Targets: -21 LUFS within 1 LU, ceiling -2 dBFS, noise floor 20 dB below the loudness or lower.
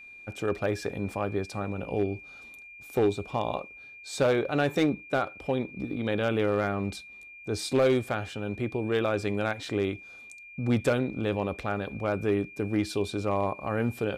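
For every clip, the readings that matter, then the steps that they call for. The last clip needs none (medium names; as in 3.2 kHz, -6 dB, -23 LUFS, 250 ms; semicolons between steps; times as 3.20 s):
clipped samples 0.3%; clipping level -17.0 dBFS; steady tone 2.4 kHz; tone level -45 dBFS; loudness -29.0 LUFS; peak level -17.0 dBFS; loudness target -21.0 LUFS
-> clip repair -17 dBFS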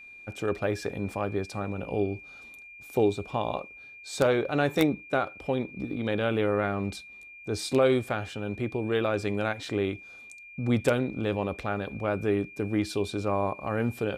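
clipped samples 0.0%; steady tone 2.4 kHz; tone level -45 dBFS
-> band-stop 2.4 kHz, Q 30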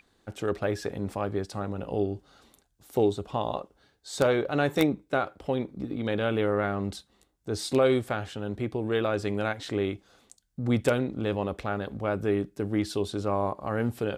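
steady tone not found; loudness -29.0 LUFS; peak level -8.0 dBFS; loudness target -21.0 LUFS
-> trim +8 dB; peak limiter -2 dBFS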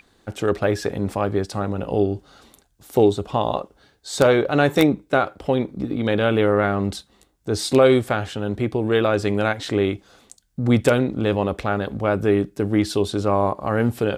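loudness -21.0 LUFS; peak level -2.0 dBFS; noise floor -61 dBFS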